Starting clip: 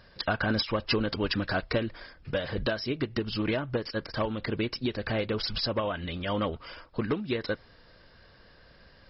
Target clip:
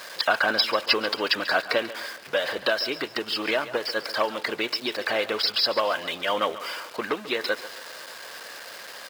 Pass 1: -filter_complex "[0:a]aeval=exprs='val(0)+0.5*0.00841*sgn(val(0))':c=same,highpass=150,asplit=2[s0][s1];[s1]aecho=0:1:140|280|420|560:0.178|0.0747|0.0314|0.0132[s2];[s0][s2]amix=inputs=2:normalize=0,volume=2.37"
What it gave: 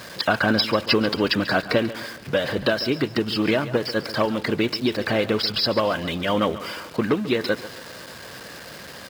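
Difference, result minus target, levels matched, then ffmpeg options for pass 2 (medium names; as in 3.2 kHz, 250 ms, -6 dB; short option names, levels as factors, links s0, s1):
125 Hz band +17.5 dB
-filter_complex "[0:a]aeval=exprs='val(0)+0.5*0.00841*sgn(val(0))':c=same,highpass=570,asplit=2[s0][s1];[s1]aecho=0:1:140|280|420|560:0.178|0.0747|0.0314|0.0132[s2];[s0][s2]amix=inputs=2:normalize=0,volume=2.37"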